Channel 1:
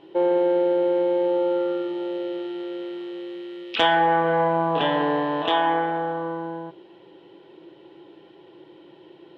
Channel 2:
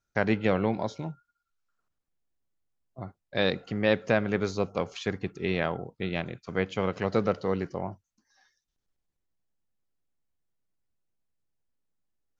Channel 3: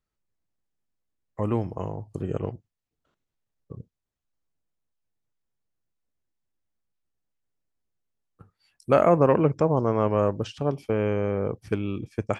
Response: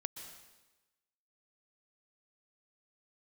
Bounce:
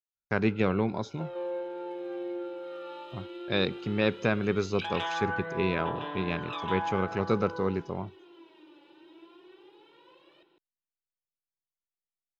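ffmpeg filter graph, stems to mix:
-filter_complex "[0:a]highpass=f=720:p=1,adynamicequalizer=threshold=0.00631:dfrequency=3200:dqfactor=1.3:tfrequency=3200:tqfactor=1.3:attack=5:release=100:ratio=0.375:range=2:mode=cutabove:tftype=bell,adelay=1050,volume=-6dB,asplit=2[a][b];[b]volume=-6.5dB[c];[1:a]agate=range=-22dB:threshold=-57dB:ratio=16:detection=peak,equalizer=f=400:w=4.1:g=5,adelay=150,volume=-2dB[d];[a]aphaser=in_gain=1:out_gain=1:delay=3.5:decay=0.77:speed=0.17:type=triangular,acompressor=threshold=-39dB:ratio=3,volume=0dB[e];[c]aecho=0:1:153:1[f];[d][e][f]amix=inputs=3:normalize=0,aecho=1:1:0.8:0.37"

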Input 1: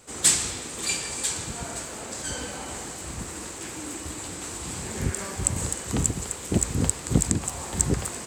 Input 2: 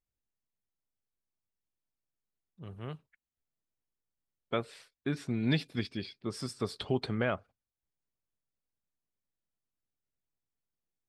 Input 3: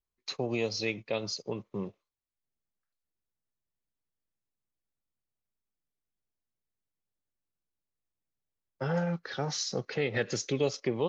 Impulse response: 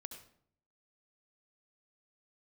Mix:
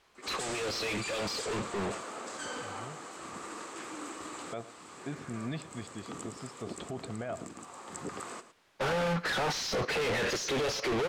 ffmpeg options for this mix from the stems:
-filter_complex "[0:a]highpass=280,equalizer=f=1.2k:w=4.8:g=10,asoftclip=type=hard:threshold=-11dB,adelay=150,volume=-4dB,asplit=2[a][b];[b]volume=-14.5dB[c];[1:a]equalizer=f=680:w=6.1:g=12,volume=-6.5dB,asplit=3[d][e][f];[e]volume=-20.5dB[g];[2:a]asplit=2[h][i];[i]highpass=f=720:p=1,volume=39dB,asoftclip=type=tanh:threshold=-16dB[j];[h][j]amix=inputs=2:normalize=0,lowpass=f=4.7k:p=1,volume=-6dB,asoftclip=type=hard:threshold=-31.5dB,volume=2.5dB,asplit=2[k][l];[l]volume=-22.5dB[m];[f]apad=whole_len=371120[n];[a][n]sidechaincompress=threshold=-43dB:ratio=8:attack=25:release=1090[o];[c][g][m]amix=inputs=3:normalize=0,aecho=0:1:110:1[p];[o][d][k][p]amix=inputs=4:normalize=0,aemphasis=mode=reproduction:type=50fm,alimiter=level_in=4dB:limit=-24dB:level=0:latency=1:release=22,volume=-4dB"

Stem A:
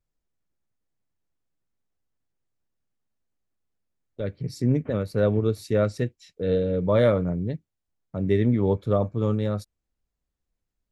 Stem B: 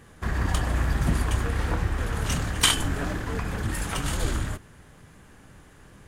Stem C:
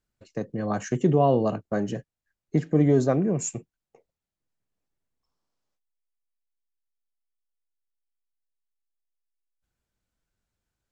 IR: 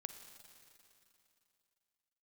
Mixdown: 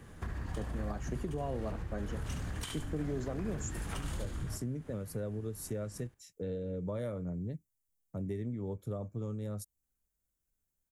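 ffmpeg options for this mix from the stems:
-filter_complex "[0:a]aexciter=amount=9.2:drive=2.9:freq=6k,volume=-11.5dB[a];[1:a]acompressor=threshold=-34dB:ratio=2.5,volume=-5dB,asplit=2[b][c];[c]volume=-12.5dB[d];[2:a]adelay=200,volume=-11dB[e];[a][b]amix=inputs=2:normalize=0,lowshelf=f=430:g=6,acompressor=threshold=-34dB:ratio=6,volume=0dB[f];[d]aecho=0:1:71|142|213|284:1|0.24|0.0576|0.0138[g];[e][f][g]amix=inputs=3:normalize=0,acrossover=split=140|3000[h][i][j];[i]acompressor=threshold=-30dB:ratio=6[k];[h][k][j]amix=inputs=3:normalize=0,alimiter=level_in=2.5dB:limit=-24dB:level=0:latency=1:release=278,volume=-2.5dB"

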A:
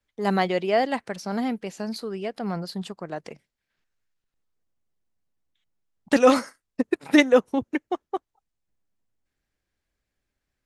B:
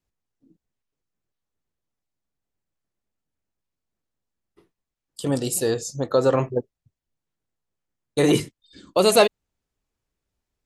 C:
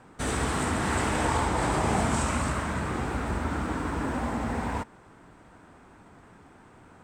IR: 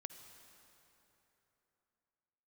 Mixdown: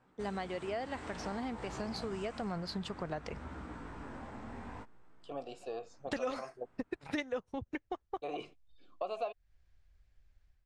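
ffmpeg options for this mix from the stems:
-filter_complex "[0:a]asubboost=boost=9.5:cutoff=81,dynaudnorm=f=950:g=3:m=10.5dB,volume=-8.5dB[a];[1:a]asplit=3[b][c][d];[b]bandpass=f=730:t=q:w=8,volume=0dB[e];[c]bandpass=f=1.09k:t=q:w=8,volume=-6dB[f];[d]bandpass=f=2.44k:t=q:w=8,volume=-9dB[g];[e][f][g]amix=inputs=3:normalize=0,adelay=50,volume=-1dB[h];[2:a]flanger=delay=15.5:depth=7.8:speed=0.57,volume=-13dB[i];[a][h][i]amix=inputs=3:normalize=0,lowpass=6.2k,acompressor=threshold=-36dB:ratio=4"

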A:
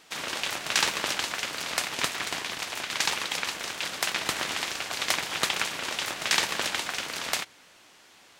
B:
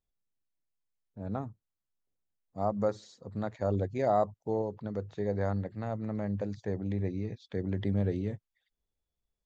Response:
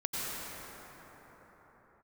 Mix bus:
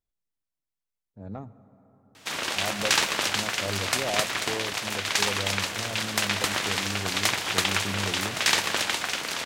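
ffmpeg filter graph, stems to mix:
-filter_complex "[0:a]adelay=2150,volume=3dB[a];[1:a]asoftclip=type=tanh:threshold=-21.5dB,volume=-2.5dB,asplit=2[b][c];[c]volume=-20.5dB[d];[2:a]atrim=start_sample=2205[e];[d][e]afir=irnorm=-1:irlink=0[f];[a][b][f]amix=inputs=3:normalize=0,asoftclip=type=tanh:threshold=-7.5dB"

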